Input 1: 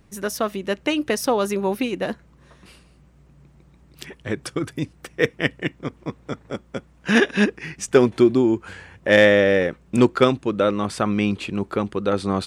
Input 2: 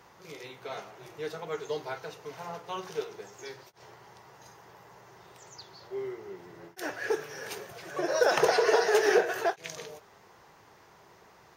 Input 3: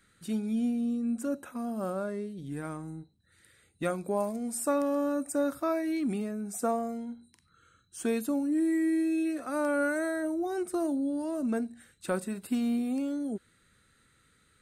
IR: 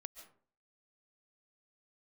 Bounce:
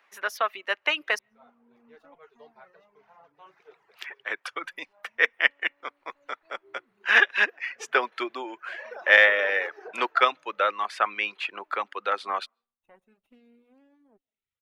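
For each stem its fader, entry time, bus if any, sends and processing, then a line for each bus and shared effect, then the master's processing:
-0.5 dB, 0.00 s, muted 1.19–3.46 s, send -22 dB, Bessel high-pass 410 Hz, order 4; tilt shelf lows -9 dB, about 750 Hz
-13.0 dB, 0.70 s, no send, none
-18.5 dB, 0.80 s, send -9 dB, comb filter that takes the minimum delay 0.32 ms; auto duck -12 dB, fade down 1.20 s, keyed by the first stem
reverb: on, RT60 0.50 s, pre-delay 100 ms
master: peaking EQ 8.4 kHz -8 dB 0.35 oct; reverb removal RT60 0.68 s; three-band isolator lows -13 dB, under 520 Hz, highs -19 dB, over 2.7 kHz

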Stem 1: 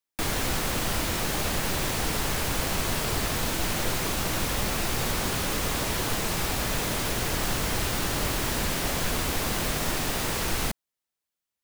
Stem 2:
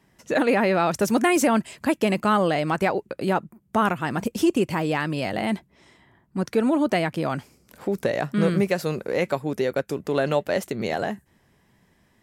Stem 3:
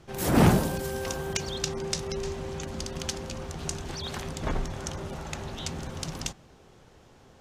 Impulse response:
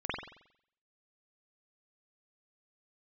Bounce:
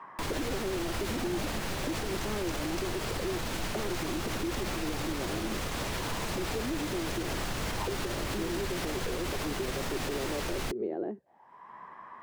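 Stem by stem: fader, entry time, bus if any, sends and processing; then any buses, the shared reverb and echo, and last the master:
-3.0 dB, 0.00 s, no send, treble shelf 8.4 kHz -10 dB
+1.5 dB, 0.00 s, no send, auto-wah 350–1100 Hz, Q 8.1, down, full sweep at -23.5 dBFS; three bands compressed up and down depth 100%
-15.5 dB, 0.85 s, no send, none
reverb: none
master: peak limiter -24 dBFS, peak gain reduction 9 dB

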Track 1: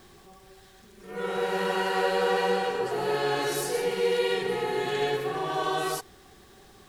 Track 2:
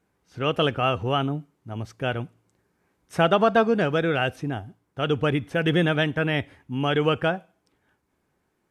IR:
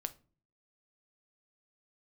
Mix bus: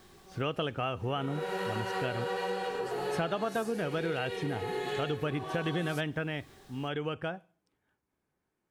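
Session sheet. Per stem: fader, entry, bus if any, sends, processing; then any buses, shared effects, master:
-3.5 dB, 0.00 s, no send, none
6.15 s -1.5 dB -> 6.41 s -11.5 dB, 0.00 s, send -13.5 dB, none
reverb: on, RT60 0.40 s, pre-delay 6 ms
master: compression 5:1, threshold -30 dBFS, peak gain reduction 14.5 dB

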